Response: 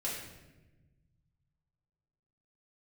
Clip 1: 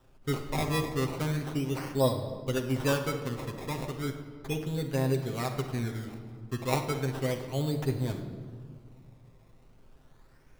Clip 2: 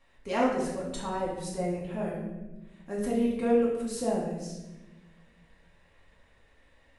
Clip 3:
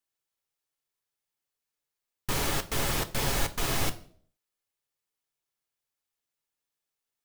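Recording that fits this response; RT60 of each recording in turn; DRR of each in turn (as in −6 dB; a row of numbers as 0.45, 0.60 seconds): 2; 1.9, 1.1, 0.50 seconds; 2.0, −6.5, 7.5 decibels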